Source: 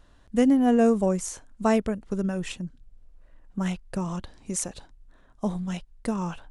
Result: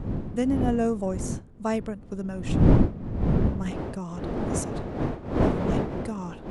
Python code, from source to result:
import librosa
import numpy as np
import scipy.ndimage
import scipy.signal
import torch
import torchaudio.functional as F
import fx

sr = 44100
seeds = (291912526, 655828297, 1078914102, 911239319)

y = fx.dmg_wind(x, sr, seeds[0], corner_hz=fx.steps((0.0, 200.0), (3.7, 390.0)), level_db=-21.0)
y = F.gain(torch.from_numpy(y), -5.0).numpy()